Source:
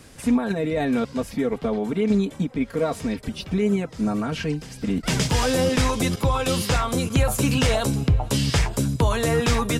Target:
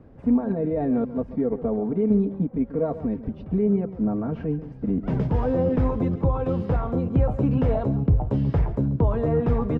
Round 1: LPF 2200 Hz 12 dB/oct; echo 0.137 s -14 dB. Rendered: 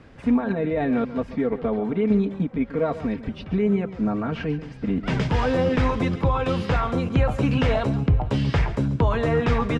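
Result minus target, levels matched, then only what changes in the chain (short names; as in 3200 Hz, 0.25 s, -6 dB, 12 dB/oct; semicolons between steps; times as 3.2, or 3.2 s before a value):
2000 Hz band +14.0 dB
change: LPF 710 Hz 12 dB/oct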